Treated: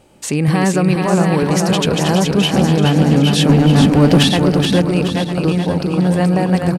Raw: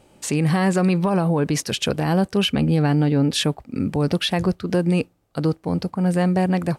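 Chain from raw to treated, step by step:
feedback delay that plays each chunk backwards 477 ms, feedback 43%, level −4 dB
0:03.49–0:04.23: leveller curve on the samples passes 2
repeating echo 425 ms, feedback 41%, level −5.5 dB
level +3.5 dB

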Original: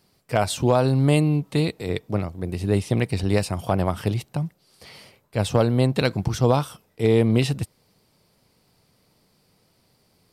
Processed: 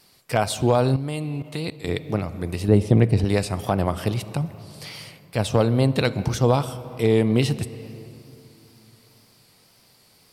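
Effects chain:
tape wow and flutter 51 cents
on a send at −14.5 dB: convolution reverb RT60 2.5 s, pre-delay 3 ms
0:00.96–0:01.89: on the sum: output level in coarse steps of 14 dB
0:02.68–0:03.25: tilt shelving filter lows +6 dB, about 1,100 Hz
one half of a high-frequency compander encoder only

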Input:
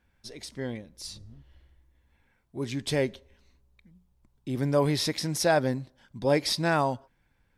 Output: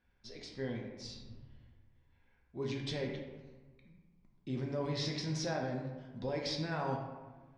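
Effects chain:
low-pass filter 5,800 Hz 24 dB per octave
brickwall limiter −23 dBFS, peak gain reduction 11 dB
convolution reverb RT60 1.3 s, pre-delay 4 ms, DRR −0.5 dB
level −7.5 dB

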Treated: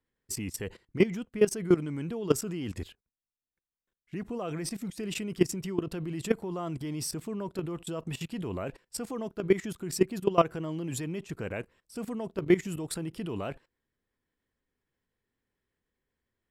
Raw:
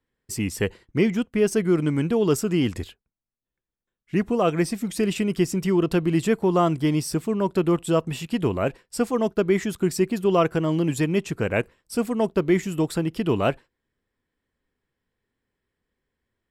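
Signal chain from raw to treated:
0:12.68–0:13.41: parametric band 9,300 Hz +9.5 dB 0.2 octaves
output level in coarse steps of 17 dB

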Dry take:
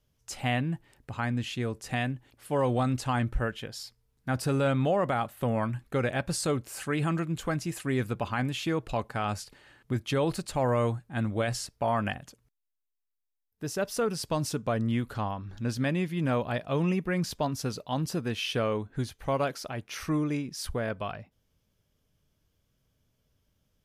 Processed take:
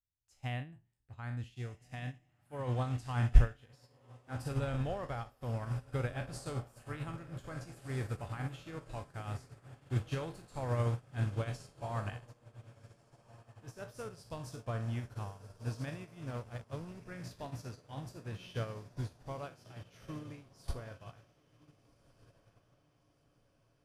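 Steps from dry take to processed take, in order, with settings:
peak hold with a decay on every bin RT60 0.44 s
low shelf with overshoot 140 Hz +8 dB, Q 1.5
0:16.26–0:17.02: slack as between gear wheels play −27.5 dBFS
on a send: feedback delay with all-pass diffusion 1,480 ms, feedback 66%, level −9 dB
on the sum: expander for the loud parts 2.5 to 1, over −36 dBFS
level +1 dB

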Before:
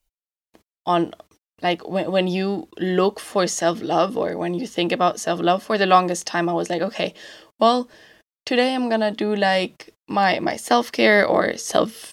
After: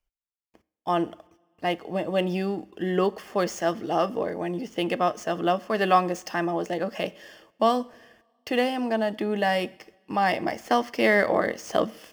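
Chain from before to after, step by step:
running median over 5 samples
parametric band 3,900 Hz −14.5 dB 0.21 octaves
coupled-rooms reverb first 0.62 s, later 2.1 s, from −17 dB, DRR 18 dB
level −5 dB

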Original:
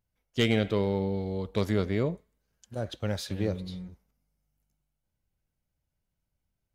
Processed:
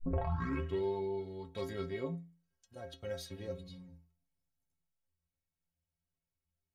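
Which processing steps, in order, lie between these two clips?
turntable start at the beginning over 0.82 s
stiff-string resonator 80 Hz, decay 0.49 s, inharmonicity 0.03
level +1 dB

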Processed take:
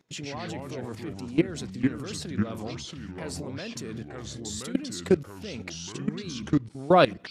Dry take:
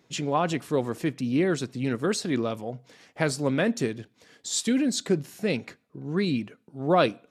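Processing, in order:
output level in coarse steps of 21 dB
delay with pitch and tempo change per echo 95 ms, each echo −4 semitones, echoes 2
level +5 dB

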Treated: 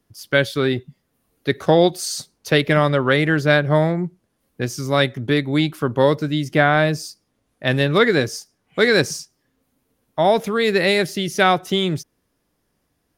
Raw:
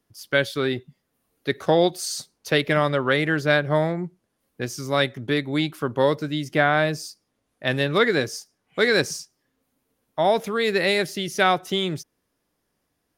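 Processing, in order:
low-shelf EQ 220 Hz +5.5 dB
level +3 dB

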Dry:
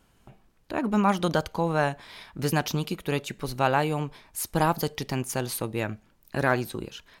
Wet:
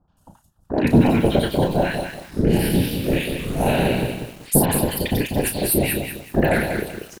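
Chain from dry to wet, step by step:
0:01.87–0:04.03: spectrum smeared in time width 130 ms
low-pass filter 12,000 Hz 12 dB per octave
high-shelf EQ 7,800 Hz +12 dB
transient designer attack +7 dB, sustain −11 dB
automatic gain control gain up to 9 dB
phaser swept by the level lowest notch 360 Hz, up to 1,200 Hz, full sweep at −20 dBFS
random phases in short frames
double-tracking delay 34 ms −8 dB
three-band delay without the direct sound lows, mids, highs 80/170 ms, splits 1,100/3,900 Hz
feedback echo at a low word length 191 ms, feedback 35%, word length 7 bits, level −6 dB
level +2 dB

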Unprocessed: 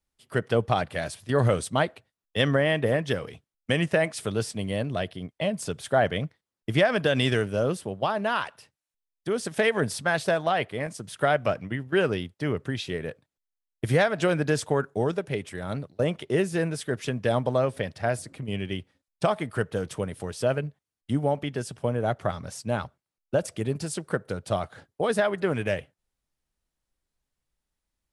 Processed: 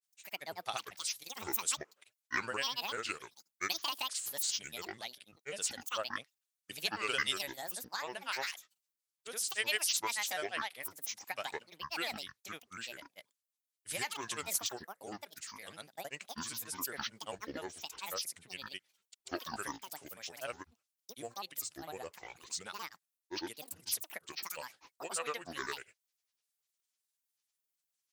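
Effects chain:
first difference
granular cloud 100 ms, grains 20 per second, pitch spread up and down by 12 semitones
level +4.5 dB

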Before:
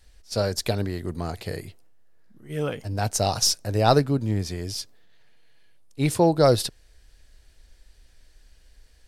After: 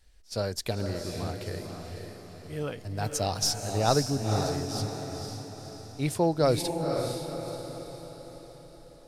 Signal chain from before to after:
0:02.98–0:03.62: bit-depth reduction 10 bits, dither none
feedback delay with all-pass diffusion 510 ms, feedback 50%, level −5 dB
level −6 dB

